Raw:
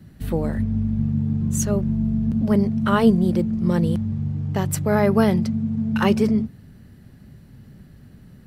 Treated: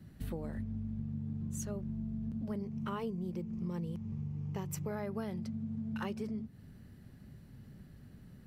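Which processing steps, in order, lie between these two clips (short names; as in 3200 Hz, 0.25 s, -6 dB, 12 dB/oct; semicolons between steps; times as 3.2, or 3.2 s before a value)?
2.61–4.91 ripple EQ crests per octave 0.77, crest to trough 7 dB; compressor 6:1, threshold -28 dBFS, peak gain reduction 16.5 dB; gain -8 dB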